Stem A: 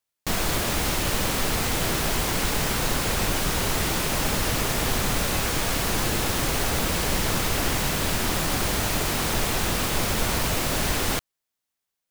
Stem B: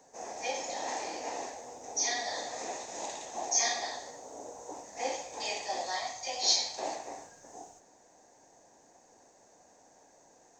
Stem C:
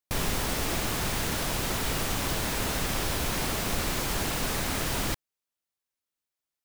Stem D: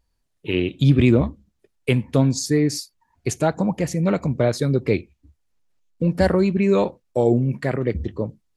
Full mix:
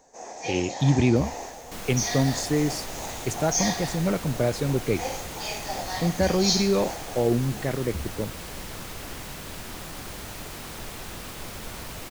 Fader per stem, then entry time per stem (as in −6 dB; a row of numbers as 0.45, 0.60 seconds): −13.0, +2.0, −19.0, −5.0 decibels; 1.45, 0.00, 1.05, 0.00 seconds